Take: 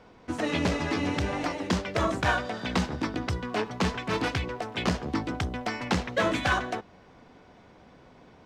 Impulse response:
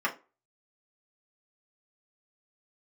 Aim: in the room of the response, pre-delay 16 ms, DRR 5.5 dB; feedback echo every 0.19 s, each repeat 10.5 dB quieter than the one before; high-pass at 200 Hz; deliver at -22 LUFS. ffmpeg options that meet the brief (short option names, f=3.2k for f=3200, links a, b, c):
-filter_complex "[0:a]highpass=200,aecho=1:1:190|380|570:0.299|0.0896|0.0269,asplit=2[a][b];[1:a]atrim=start_sample=2205,adelay=16[c];[b][c]afir=irnorm=-1:irlink=0,volume=-16dB[d];[a][d]amix=inputs=2:normalize=0,volume=7dB"